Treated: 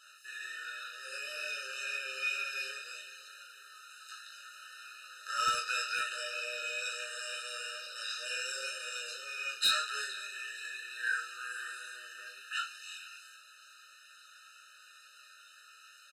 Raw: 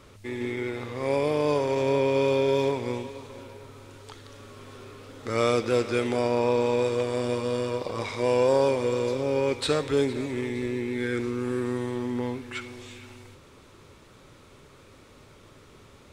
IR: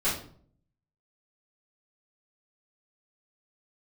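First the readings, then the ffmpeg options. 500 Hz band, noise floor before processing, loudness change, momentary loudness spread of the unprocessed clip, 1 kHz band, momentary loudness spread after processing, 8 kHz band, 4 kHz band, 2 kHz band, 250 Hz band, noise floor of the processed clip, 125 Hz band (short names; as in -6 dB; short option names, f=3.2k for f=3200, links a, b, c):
-27.5 dB, -53 dBFS, -9.5 dB, 22 LU, -7.5 dB, 23 LU, +2.0 dB, +2.0 dB, +1.5 dB, under -40 dB, -58 dBFS, under -35 dB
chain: -filter_complex "[0:a]highpass=f=1.3k:w=0.5412,highpass=f=1.3k:w=1.3066,flanger=delay=16:depth=5.4:speed=2,asplit=2[a][b];[b]adelay=23,volume=-6.5dB[c];[a][c]amix=inputs=2:normalize=0,aecho=1:1:10|38:0.596|0.562,aresample=32000,aresample=44100,volume=25dB,asoftclip=hard,volume=-25dB,afftfilt=real='re*eq(mod(floor(b*sr/1024/610),2),0)':imag='im*eq(mod(floor(b*sr/1024/610),2),0)':win_size=1024:overlap=0.75,volume=5.5dB"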